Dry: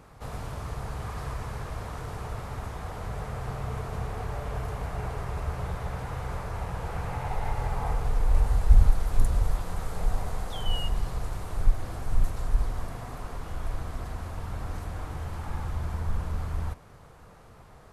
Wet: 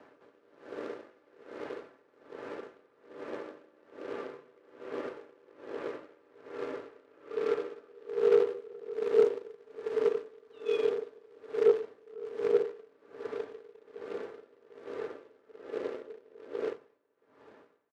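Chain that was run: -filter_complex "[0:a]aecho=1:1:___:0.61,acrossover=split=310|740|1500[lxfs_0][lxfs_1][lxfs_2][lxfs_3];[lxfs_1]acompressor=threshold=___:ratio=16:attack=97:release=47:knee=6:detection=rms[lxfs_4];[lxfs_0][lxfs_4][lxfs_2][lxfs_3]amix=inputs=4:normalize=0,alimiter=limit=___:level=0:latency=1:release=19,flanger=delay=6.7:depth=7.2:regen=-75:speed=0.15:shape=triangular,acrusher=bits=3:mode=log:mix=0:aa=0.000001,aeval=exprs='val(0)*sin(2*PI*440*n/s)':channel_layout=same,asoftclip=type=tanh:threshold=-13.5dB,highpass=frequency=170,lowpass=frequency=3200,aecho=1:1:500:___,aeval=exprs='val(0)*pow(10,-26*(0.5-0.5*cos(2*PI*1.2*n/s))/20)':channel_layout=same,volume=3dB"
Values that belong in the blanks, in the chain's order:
5.4, -52dB, -10.5dB, 0.0794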